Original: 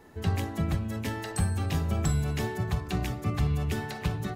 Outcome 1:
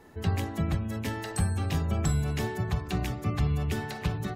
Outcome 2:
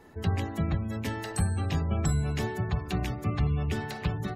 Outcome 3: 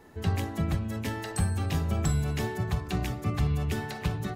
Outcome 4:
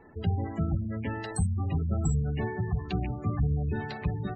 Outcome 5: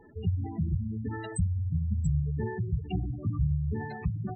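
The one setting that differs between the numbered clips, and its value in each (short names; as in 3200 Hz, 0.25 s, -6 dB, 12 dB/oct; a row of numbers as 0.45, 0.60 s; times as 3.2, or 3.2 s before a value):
spectral gate, under each frame's peak: -45, -35, -60, -20, -10 dB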